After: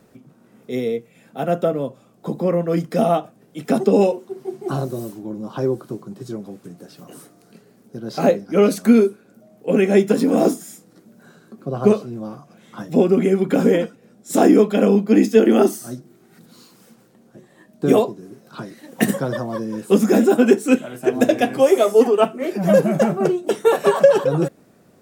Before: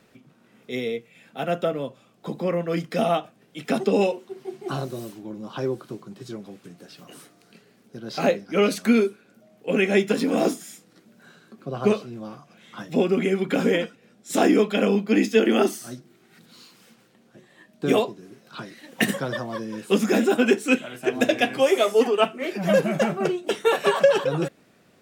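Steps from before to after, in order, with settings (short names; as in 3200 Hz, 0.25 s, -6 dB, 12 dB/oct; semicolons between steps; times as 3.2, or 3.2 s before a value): bell 2800 Hz -11 dB 2.1 oct; gain +6.5 dB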